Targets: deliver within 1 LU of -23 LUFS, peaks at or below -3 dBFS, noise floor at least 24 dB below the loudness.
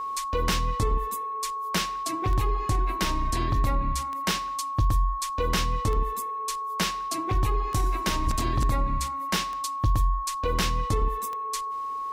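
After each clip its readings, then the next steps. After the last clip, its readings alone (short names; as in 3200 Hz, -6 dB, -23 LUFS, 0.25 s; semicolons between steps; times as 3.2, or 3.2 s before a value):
clicks 7; steady tone 1100 Hz; tone level -29 dBFS; loudness -27.5 LUFS; peak -14.0 dBFS; loudness target -23.0 LUFS
-> de-click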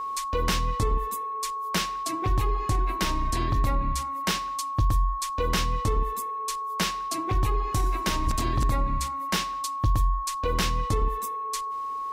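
clicks 0; steady tone 1100 Hz; tone level -29 dBFS
-> notch 1100 Hz, Q 30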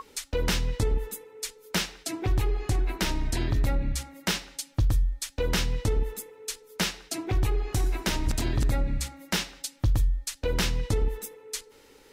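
steady tone none; loudness -29.5 LUFS; peak -15.5 dBFS; loudness target -23.0 LUFS
-> gain +6.5 dB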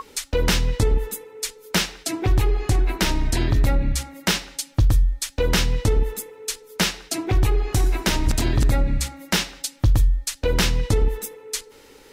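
loudness -23.0 LUFS; peak -9.0 dBFS; noise floor -49 dBFS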